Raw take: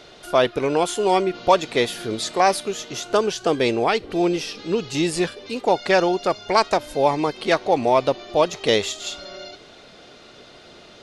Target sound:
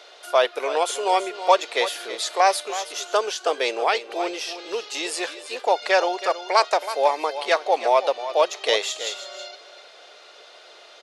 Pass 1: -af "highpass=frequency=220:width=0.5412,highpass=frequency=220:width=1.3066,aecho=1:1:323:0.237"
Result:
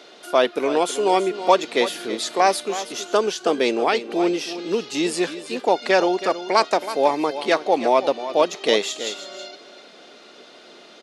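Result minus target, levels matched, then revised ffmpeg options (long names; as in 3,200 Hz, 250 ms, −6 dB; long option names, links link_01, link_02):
250 Hz band +11.0 dB
-af "highpass=frequency=490:width=0.5412,highpass=frequency=490:width=1.3066,aecho=1:1:323:0.237"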